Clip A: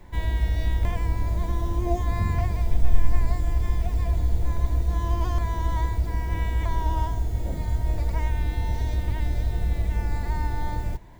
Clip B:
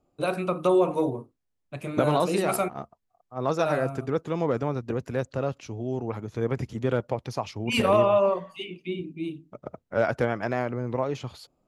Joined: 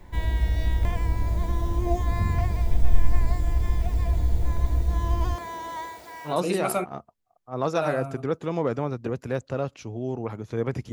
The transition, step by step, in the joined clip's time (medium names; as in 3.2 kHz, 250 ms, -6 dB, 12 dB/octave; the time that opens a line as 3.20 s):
clip A
5.34–6.38 s: high-pass 280 Hz -> 860 Hz
6.31 s: go over to clip B from 2.15 s, crossfade 0.14 s